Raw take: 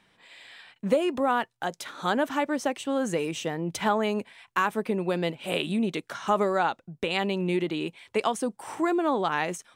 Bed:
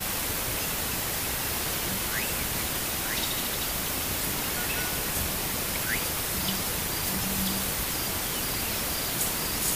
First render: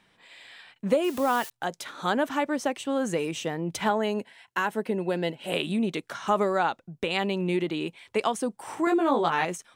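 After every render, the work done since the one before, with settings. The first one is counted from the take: 1.04–1.5 switching spikes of -28 dBFS; 3.9–5.53 notch comb 1200 Hz; 8.85–9.45 doubler 18 ms -3 dB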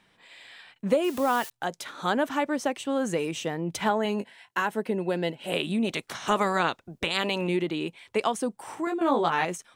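4.03–4.62 doubler 20 ms -8 dB; 5.84–7.47 spectral limiter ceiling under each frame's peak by 15 dB; 8.58–9.01 fade out, to -9 dB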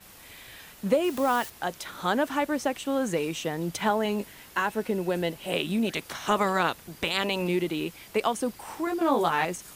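add bed -20.5 dB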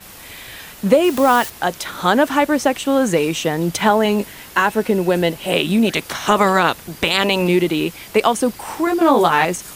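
gain +11 dB; limiter -2 dBFS, peak gain reduction 3 dB

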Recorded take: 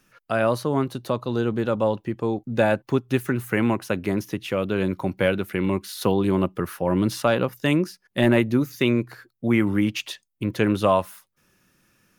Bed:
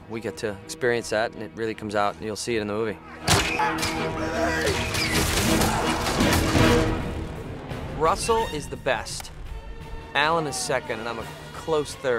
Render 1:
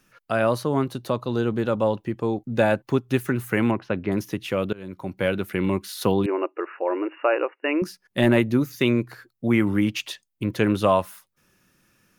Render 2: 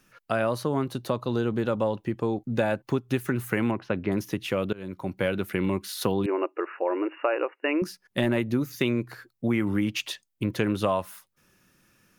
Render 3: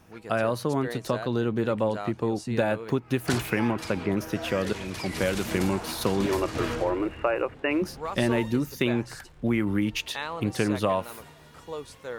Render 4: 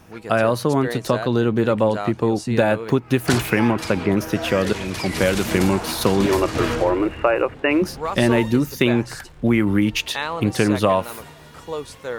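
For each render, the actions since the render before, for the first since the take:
3.71–4.12 air absorption 260 m; 4.73–5.45 fade in, from -23.5 dB; 6.26–7.82 brick-wall FIR band-pass 290–2900 Hz
compressor 3:1, threshold -22 dBFS, peak gain reduction 7 dB
add bed -12.5 dB
gain +7.5 dB; limiter -3 dBFS, peak gain reduction 1 dB

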